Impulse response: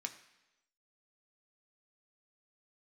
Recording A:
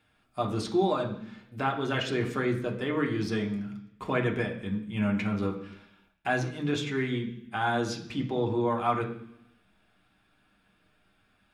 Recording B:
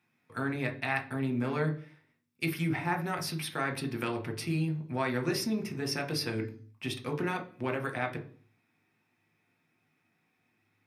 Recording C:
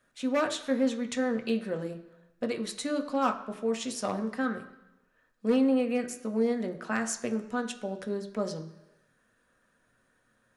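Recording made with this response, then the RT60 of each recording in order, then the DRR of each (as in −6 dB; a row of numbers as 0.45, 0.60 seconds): C; 0.70, 0.45, 1.0 seconds; 0.5, 3.5, 5.0 decibels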